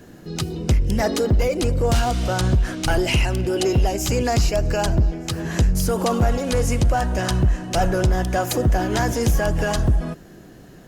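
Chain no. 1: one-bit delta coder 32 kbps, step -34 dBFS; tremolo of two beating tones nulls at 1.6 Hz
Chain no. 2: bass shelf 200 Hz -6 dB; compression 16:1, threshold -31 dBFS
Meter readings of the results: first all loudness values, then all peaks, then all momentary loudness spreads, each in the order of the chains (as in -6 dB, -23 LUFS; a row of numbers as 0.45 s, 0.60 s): -23.5 LUFS, -35.5 LUFS; -12.0 dBFS, -18.0 dBFS; 8 LU, 2 LU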